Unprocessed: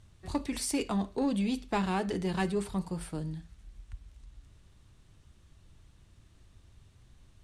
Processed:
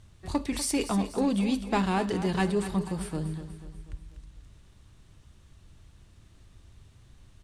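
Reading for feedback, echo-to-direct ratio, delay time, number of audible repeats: 49%, -11.0 dB, 0.244 s, 4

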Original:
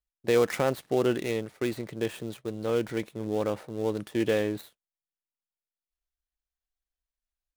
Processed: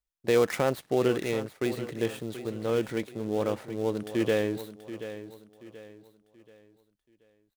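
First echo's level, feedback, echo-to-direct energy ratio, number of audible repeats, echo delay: -12.5 dB, 36%, -12.0 dB, 3, 0.731 s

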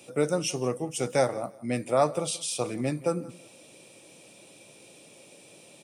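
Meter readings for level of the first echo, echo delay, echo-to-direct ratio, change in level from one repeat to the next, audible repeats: -20.0 dB, 0.174 s, -20.0 dB, -14.0 dB, 2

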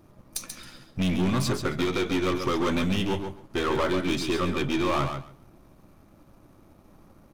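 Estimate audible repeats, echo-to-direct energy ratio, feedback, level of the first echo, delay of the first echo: 2, -7.0 dB, 16%, -7.0 dB, 0.136 s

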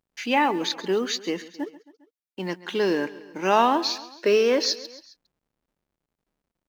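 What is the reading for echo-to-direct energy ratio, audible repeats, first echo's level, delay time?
-16.5 dB, 3, -18.0 dB, 0.135 s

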